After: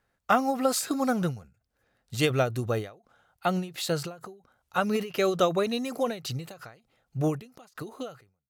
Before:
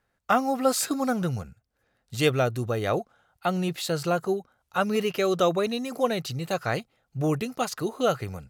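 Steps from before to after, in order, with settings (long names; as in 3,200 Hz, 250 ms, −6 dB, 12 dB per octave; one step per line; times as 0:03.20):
fade-out on the ending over 0.91 s
every ending faded ahead of time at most 150 dB per second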